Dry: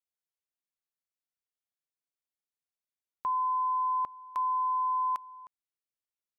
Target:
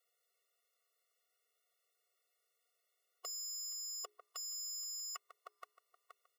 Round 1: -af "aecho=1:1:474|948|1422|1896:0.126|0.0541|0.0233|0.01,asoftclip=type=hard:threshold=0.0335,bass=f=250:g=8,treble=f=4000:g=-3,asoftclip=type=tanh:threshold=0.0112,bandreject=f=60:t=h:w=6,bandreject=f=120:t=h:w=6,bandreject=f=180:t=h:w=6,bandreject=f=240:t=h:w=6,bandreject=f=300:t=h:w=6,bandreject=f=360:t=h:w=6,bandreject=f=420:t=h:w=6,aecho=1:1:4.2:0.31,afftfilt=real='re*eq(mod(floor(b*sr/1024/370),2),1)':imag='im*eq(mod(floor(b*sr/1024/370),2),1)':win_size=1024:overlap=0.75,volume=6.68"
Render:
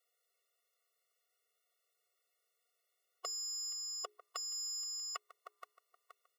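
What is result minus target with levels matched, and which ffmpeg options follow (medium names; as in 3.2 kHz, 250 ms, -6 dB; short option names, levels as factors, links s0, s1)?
saturation: distortion -4 dB
-af "aecho=1:1:474|948|1422|1896:0.126|0.0541|0.0233|0.01,asoftclip=type=hard:threshold=0.0335,bass=f=250:g=8,treble=f=4000:g=-3,asoftclip=type=tanh:threshold=0.00501,bandreject=f=60:t=h:w=6,bandreject=f=120:t=h:w=6,bandreject=f=180:t=h:w=6,bandreject=f=240:t=h:w=6,bandreject=f=300:t=h:w=6,bandreject=f=360:t=h:w=6,bandreject=f=420:t=h:w=6,aecho=1:1:4.2:0.31,afftfilt=real='re*eq(mod(floor(b*sr/1024/370),2),1)':imag='im*eq(mod(floor(b*sr/1024/370),2),1)':win_size=1024:overlap=0.75,volume=6.68"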